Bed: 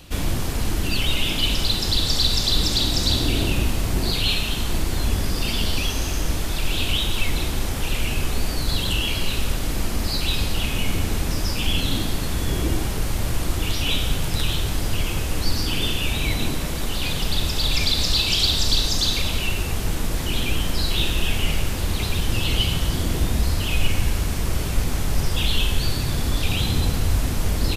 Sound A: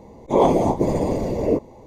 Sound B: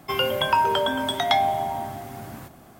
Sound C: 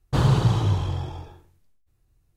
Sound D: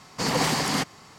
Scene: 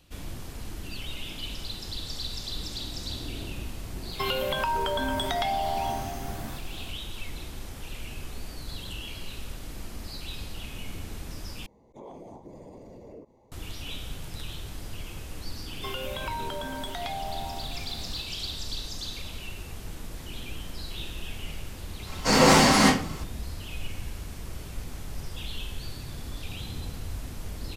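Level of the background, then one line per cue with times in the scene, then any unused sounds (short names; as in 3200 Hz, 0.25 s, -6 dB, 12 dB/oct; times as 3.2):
bed -15 dB
4.11 add B -0.5 dB + compressor, threshold -24 dBFS
11.66 replace with A -16 dB + compressor 3:1, threshold -29 dBFS
15.75 add B -9 dB + compressor, threshold -22 dBFS
22.06 add D -6 dB + shoebox room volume 31 m³, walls mixed, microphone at 2.1 m
not used: C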